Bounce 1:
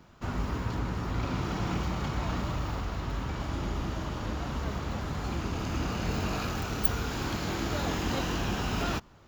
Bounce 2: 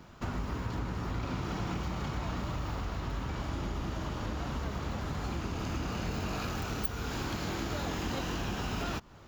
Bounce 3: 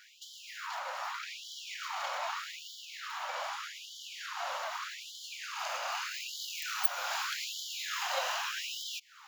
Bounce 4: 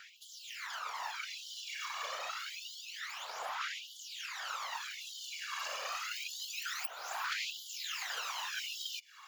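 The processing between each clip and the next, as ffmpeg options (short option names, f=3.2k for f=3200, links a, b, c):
-af "acompressor=threshold=-37dB:ratio=3,volume=3.5dB"
-af "afftfilt=real='re*gte(b*sr/1024,500*pow(3000/500,0.5+0.5*sin(2*PI*0.82*pts/sr)))':imag='im*gte(b*sr/1024,500*pow(3000/500,0.5+0.5*sin(2*PI*0.82*pts/sr)))':win_size=1024:overlap=0.75,volume=6dB"
-filter_complex "[0:a]acrossover=split=680|2400[a][b][c];[a]acompressor=threshold=-60dB:ratio=4[d];[b]acompressor=threshold=-41dB:ratio=4[e];[c]acompressor=threshold=-41dB:ratio=4[f];[d][e][f]amix=inputs=3:normalize=0,aphaser=in_gain=1:out_gain=1:delay=1.8:decay=0.67:speed=0.27:type=sinusoidal,afftfilt=real='hypot(re,im)*cos(2*PI*random(0))':imag='hypot(re,im)*sin(2*PI*random(1))':win_size=512:overlap=0.75,volume=4dB"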